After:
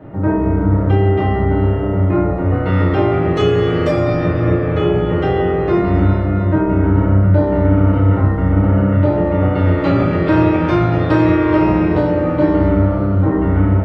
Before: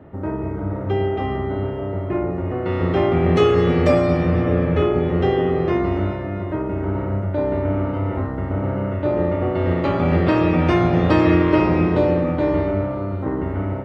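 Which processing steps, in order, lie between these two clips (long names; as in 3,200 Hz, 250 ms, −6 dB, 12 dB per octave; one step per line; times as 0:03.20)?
downward compressor, threshold −18 dBFS, peak gain reduction 7.5 dB
convolution reverb RT60 0.35 s, pre-delay 6 ms, DRR −3 dB
level +2.5 dB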